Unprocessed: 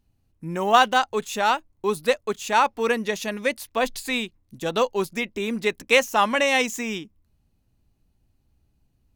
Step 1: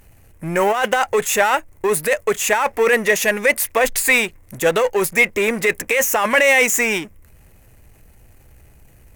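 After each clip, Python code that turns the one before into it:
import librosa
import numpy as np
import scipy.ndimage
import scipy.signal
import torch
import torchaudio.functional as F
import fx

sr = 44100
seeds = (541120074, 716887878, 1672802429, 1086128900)

y = fx.over_compress(x, sr, threshold_db=-23.0, ratio=-1.0)
y = fx.power_curve(y, sr, exponent=0.7)
y = fx.graphic_eq_10(y, sr, hz=(250, 500, 2000, 4000, 8000, 16000), db=(-6, 7, 12, -8, 5, 10))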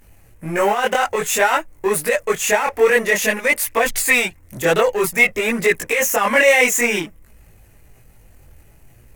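y = fx.chorus_voices(x, sr, voices=2, hz=0.53, base_ms=21, depth_ms=4.4, mix_pct=55)
y = y * librosa.db_to_amplitude(3.0)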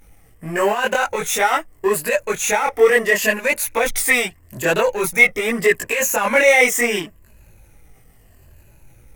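y = fx.spec_ripple(x, sr, per_octave=1.4, drift_hz=-0.77, depth_db=8)
y = y * librosa.db_to_amplitude(-1.5)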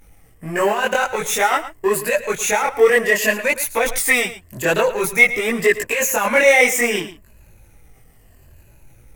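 y = x + 10.0 ** (-14.0 / 20.0) * np.pad(x, (int(111 * sr / 1000.0), 0))[:len(x)]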